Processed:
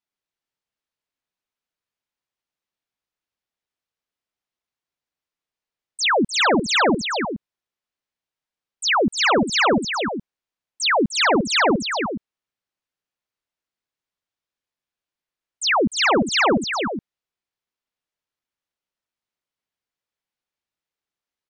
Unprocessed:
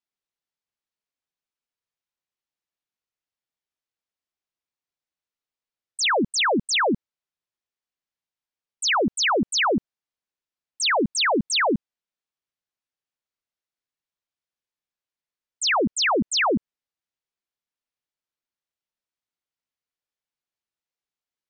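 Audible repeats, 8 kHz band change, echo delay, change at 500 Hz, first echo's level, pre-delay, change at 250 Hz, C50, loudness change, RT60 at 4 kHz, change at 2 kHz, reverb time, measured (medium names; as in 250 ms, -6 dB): 2, 0.0 dB, 302 ms, +4.0 dB, -7.0 dB, no reverb, +4.0 dB, no reverb, +2.5 dB, no reverb, +3.5 dB, no reverb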